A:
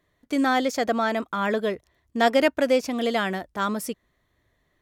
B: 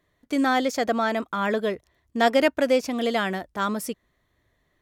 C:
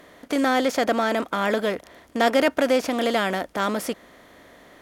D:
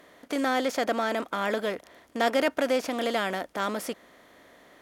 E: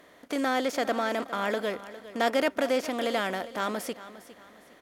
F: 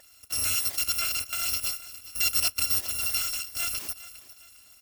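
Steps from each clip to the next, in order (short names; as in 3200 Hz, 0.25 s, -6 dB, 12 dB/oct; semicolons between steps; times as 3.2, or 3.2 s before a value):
nothing audible
per-bin compression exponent 0.6; gain -1.5 dB
low shelf 150 Hz -7 dB; gain -4.5 dB
feedback echo 0.406 s, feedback 35%, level -15.5 dB; gain -1 dB
FFT order left unsorted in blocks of 256 samples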